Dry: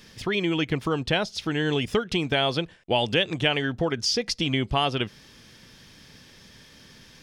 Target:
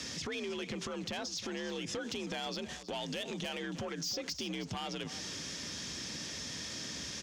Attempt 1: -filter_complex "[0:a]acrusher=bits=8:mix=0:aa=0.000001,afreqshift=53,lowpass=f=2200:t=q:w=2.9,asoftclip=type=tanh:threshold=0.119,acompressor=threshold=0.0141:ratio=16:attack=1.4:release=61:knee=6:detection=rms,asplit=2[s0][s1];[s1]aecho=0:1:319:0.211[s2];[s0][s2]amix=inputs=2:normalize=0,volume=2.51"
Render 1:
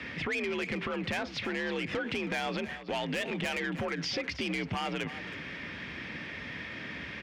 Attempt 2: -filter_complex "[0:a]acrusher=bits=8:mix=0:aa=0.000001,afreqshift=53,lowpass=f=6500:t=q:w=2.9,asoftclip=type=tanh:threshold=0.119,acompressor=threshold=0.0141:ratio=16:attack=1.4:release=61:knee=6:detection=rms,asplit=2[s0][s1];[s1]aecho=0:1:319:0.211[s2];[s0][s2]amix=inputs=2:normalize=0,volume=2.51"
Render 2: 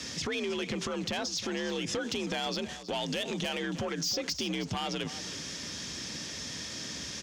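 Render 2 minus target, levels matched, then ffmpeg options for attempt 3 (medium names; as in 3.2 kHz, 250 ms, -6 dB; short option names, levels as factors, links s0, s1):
compression: peak gain reduction -5.5 dB
-filter_complex "[0:a]acrusher=bits=8:mix=0:aa=0.000001,afreqshift=53,lowpass=f=6500:t=q:w=2.9,asoftclip=type=tanh:threshold=0.119,acompressor=threshold=0.00708:ratio=16:attack=1.4:release=61:knee=6:detection=rms,asplit=2[s0][s1];[s1]aecho=0:1:319:0.211[s2];[s0][s2]amix=inputs=2:normalize=0,volume=2.51"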